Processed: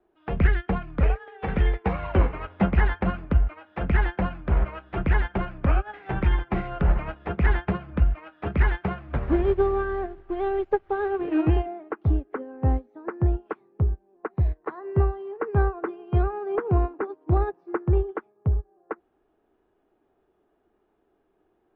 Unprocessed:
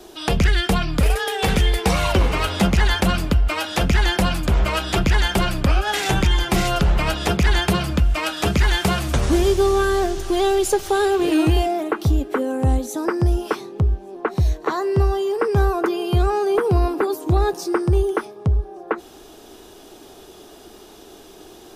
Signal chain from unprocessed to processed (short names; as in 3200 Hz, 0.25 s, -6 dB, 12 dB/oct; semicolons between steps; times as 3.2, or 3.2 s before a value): LPF 2100 Hz 24 dB/oct; upward expander 2.5:1, over -29 dBFS